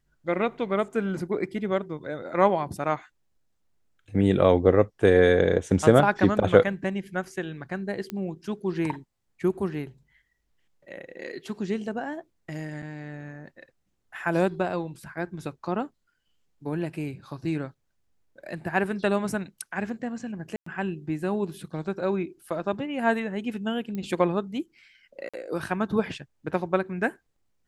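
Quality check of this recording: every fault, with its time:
8.1 pop -18 dBFS
12.82–12.83 gap 5.4 ms
20.56–20.66 gap 0.104 s
23.95 pop -22 dBFS
25.29–25.34 gap 46 ms

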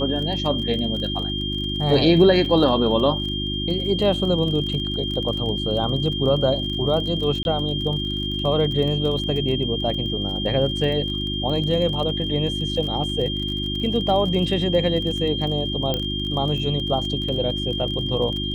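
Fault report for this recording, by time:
crackle 31/s -29 dBFS
hum 50 Hz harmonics 7 -28 dBFS
tone 3200 Hz -27 dBFS
2.45 gap 3 ms
7.43–7.45 gap 21 ms
15.94 pop -10 dBFS

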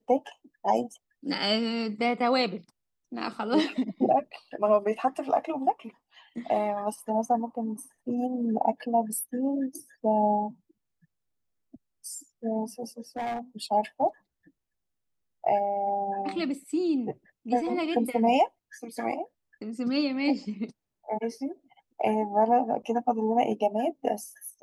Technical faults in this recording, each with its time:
13.17–13.39 clipped -28.5 dBFS

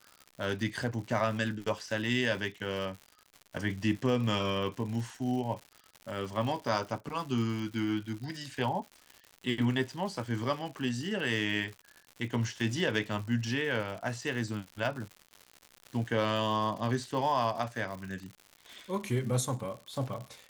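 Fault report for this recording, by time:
crackle 160/s -39 dBFS

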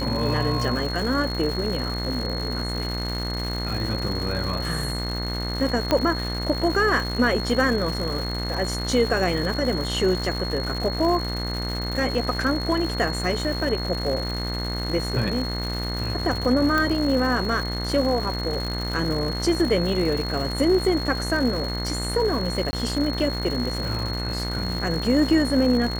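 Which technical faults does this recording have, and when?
buzz 60 Hz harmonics 36 -29 dBFS
crackle 300/s -29 dBFS
tone 4300 Hz -31 dBFS
5.91 pop -7 dBFS
16.78 pop -10 dBFS
22.71–22.73 gap 20 ms

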